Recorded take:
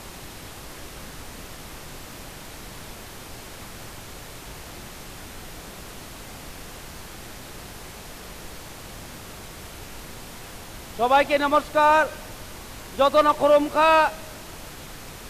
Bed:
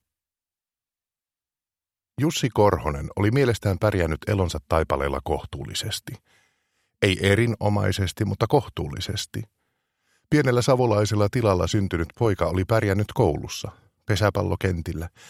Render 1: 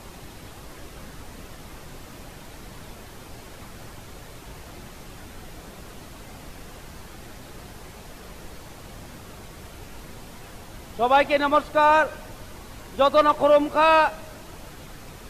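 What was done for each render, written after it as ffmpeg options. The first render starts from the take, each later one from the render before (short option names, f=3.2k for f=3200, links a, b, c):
-af "afftdn=nr=6:nf=-41"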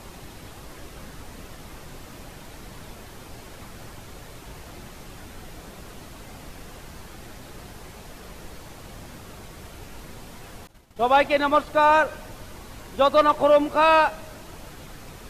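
-filter_complex "[0:a]asettb=1/sr,asplit=3[a][b][c];[a]atrim=end=10.674[d];[b]atrim=start=10.67:end=11.67,asetpts=PTS-STARTPTS,afade=t=in:d=0.004:c=qsin,afade=t=out:st=0.996:d=0.004:c=qsin,agate=range=-33dB:threshold=-32dB:ratio=3:release=100:detection=peak[e];[c]atrim=start=11.666[f];[d][e]acrossfade=d=0.004:c1=hsin:c2=qsin[g];[g][f]acrossfade=d=0.004:c1=qsin:c2=hsin"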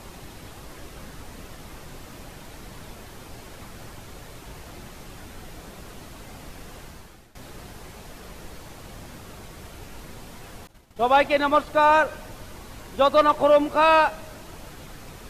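-filter_complex "[0:a]asplit=2[a][b];[a]atrim=end=7.35,asetpts=PTS-STARTPTS,afade=t=out:st=6.83:d=0.52:silence=0.11885[c];[b]atrim=start=7.35,asetpts=PTS-STARTPTS,afade=t=in:d=0.004:c=hsin:silence=0.11885[d];[c][d]concat=n=2:v=0:a=1"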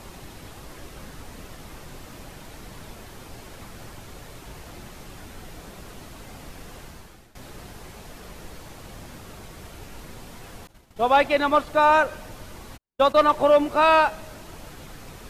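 -filter_complex "[0:a]asplit=3[a][b][c];[a]afade=t=out:st=12.76:d=0.02[d];[b]agate=range=-55dB:threshold=-29dB:ratio=16:release=100:detection=peak,afade=t=in:st=12.76:d=0.02,afade=t=out:st=13.2:d=0.02[e];[c]afade=t=in:st=13.2:d=0.02[f];[d][e][f]amix=inputs=3:normalize=0"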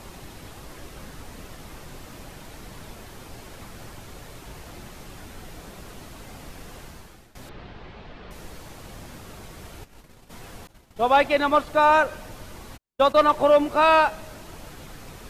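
-filter_complex "[0:a]asettb=1/sr,asplit=3[a][b][c];[a]atrim=end=7.494[d];[b]atrim=start=7.49:end=8.31,asetpts=PTS-STARTPTS,afade=t=in:d=0.004:c=qsin,afade=t=out:st=0.816:d=0.004:c=qsin,lowpass=f=3.9k:w=0.5412,lowpass=f=3.9k:w=1.3066[e];[c]atrim=start=8.306[f];[d][e]acrossfade=d=0.004:c1=hsin:c2=qsin[g];[g][f]acrossfade=d=0.004:c1=qsin:c2=hsin,asplit=3[h][i][j];[h]afade=t=out:st=9.83:d=0.02[k];[i]agate=range=-33dB:threshold=-33dB:ratio=3:release=100:detection=peak,afade=t=in:st=9.83:d=0.02,afade=t=out:st=10.29:d=0.02[l];[j]afade=t=in:st=10.29:d=0.02[m];[k][l][m]amix=inputs=3:normalize=0"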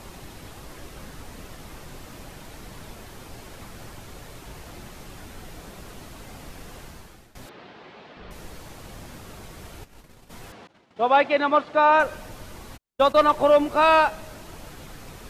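-filter_complex "[0:a]asettb=1/sr,asplit=3[a][b][c];[a]atrim=end=7.464[d];[b]atrim=start=7.46:end=8.17,asetpts=PTS-STARTPTS,afade=t=in:d=0.004:c=qsin,afade=t=out:st=0.706:d=0.004:c=qsin,highpass=240[e];[c]atrim=start=8.166[f];[d][e]acrossfade=d=0.004:c1=hsin:c2=qsin[g];[g][f]acrossfade=d=0.004:c1=qsin:c2=hsin,asettb=1/sr,asplit=3[h][i][j];[h]atrim=end=10.524[k];[i]atrim=start=10.52:end=12,asetpts=PTS-STARTPTS,afade=t=in:d=0.004:c=qsin,afade=t=out:st=1.476:d=0.004:c=qsin,highpass=190,lowpass=3.9k[l];[j]atrim=start=11.996[m];[k][l]acrossfade=d=0.004:c1=hsin:c2=qsin[n];[n][m]acrossfade=d=0.004:c1=qsin:c2=hsin"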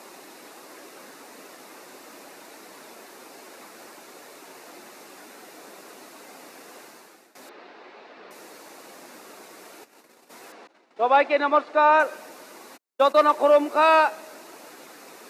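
-af "highpass=f=280:w=0.5412,highpass=f=280:w=1.3066,equalizer=f=3.2k:t=o:w=0.22:g=-8"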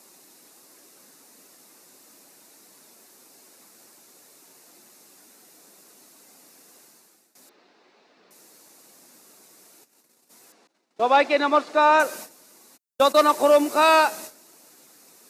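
-af "agate=range=-14dB:threshold=-40dB:ratio=16:detection=peak,bass=f=250:g=10,treble=f=4k:g=14"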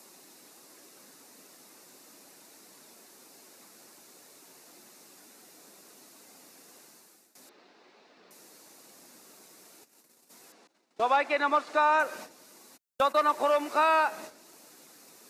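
-filter_complex "[0:a]acrossover=split=810|2500|6000[a][b][c][d];[a]acompressor=threshold=-34dB:ratio=4[e];[b]acompressor=threshold=-23dB:ratio=4[f];[c]acompressor=threshold=-49dB:ratio=4[g];[d]acompressor=threshold=-56dB:ratio=4[h];[e][f][g][h]amix=inputs=4:normalize=0"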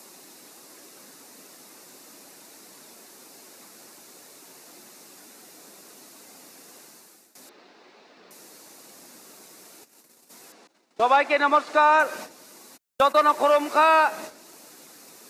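-af "volume=6dB"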